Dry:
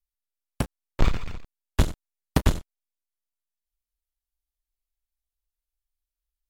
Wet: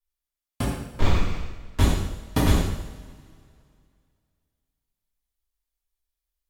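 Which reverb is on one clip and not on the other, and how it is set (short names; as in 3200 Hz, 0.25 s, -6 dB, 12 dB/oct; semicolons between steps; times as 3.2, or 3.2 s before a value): two-slope reverb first 0.85 s, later 2.4 s, from -17 dB, DRR -8.5 dB; gain -5.5 dB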